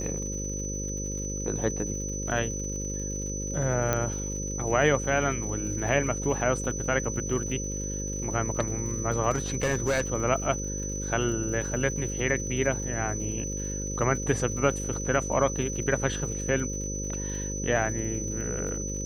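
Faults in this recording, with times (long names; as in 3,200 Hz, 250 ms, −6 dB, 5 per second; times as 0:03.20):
mains buzz 50 Hz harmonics 11 −34 dBFS
surface crackle 93 per second −38 dBFS
whistle 6,000 Hz −34 dBFS
0:03.93: click −11 dBFS
0:09.30–0:10.01: clipping −21 dBFS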